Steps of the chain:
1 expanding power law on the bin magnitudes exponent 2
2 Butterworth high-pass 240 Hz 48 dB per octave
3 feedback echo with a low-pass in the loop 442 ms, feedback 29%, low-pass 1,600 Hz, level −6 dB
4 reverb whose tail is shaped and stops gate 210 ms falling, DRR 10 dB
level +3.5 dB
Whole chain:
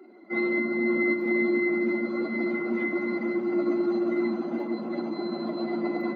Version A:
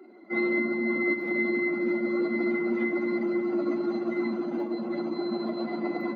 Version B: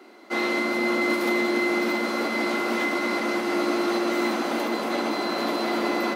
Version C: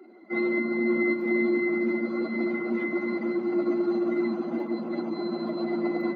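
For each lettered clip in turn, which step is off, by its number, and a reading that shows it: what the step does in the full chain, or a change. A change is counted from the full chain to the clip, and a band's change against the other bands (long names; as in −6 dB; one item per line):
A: 3, change in momentary loudness spread −2 LU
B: 1, 1 kHz band +11.0 dB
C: 4, echo-to-direct ratio −6.0 dB to −8.5 dB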